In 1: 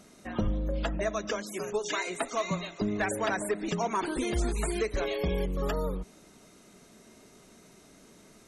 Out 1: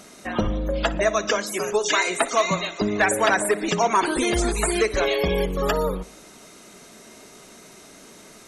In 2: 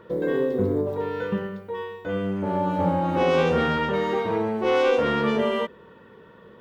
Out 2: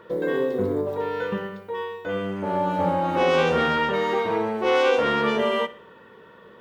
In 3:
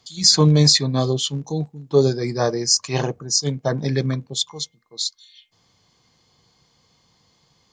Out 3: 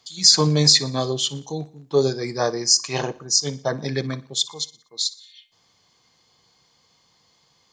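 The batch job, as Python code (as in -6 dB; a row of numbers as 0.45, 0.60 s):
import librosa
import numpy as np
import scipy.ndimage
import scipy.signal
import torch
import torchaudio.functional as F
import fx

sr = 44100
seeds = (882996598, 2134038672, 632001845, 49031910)

y = fx.low_shelf(x, sr, hz=320.0, db=-9.0)
y = fx.echo_feedback(y, sr, ms=60, feedback_pct=46, wet_db=-19.0)
y = y * 10.0 ** (-24 / 20.0) / np.sqrt(np.mean(np.square(y)))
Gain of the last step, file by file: +11.5, +3.5, +1.0 dB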